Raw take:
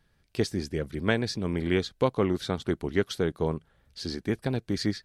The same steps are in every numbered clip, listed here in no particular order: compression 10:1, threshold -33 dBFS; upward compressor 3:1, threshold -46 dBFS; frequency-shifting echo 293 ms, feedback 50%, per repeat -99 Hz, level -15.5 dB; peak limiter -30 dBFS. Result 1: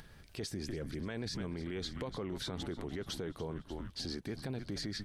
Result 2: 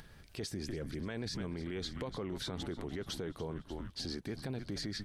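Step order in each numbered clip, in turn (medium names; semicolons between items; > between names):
upward compressor > frequency-shifting echo > peak limiter > compression; frequency-shifting echo > upward compressor > peak limiter > compression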